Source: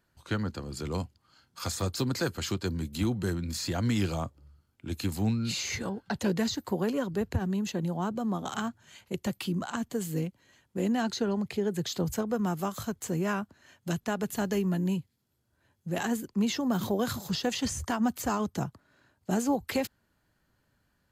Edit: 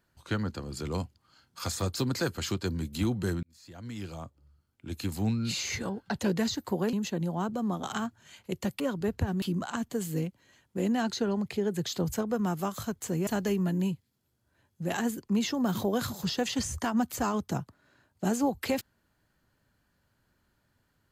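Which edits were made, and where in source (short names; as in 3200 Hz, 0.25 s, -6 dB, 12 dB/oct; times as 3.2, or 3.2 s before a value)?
3.43–5.47 fade in
6.93–7.55 move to 9.42
13.27–14.33 cut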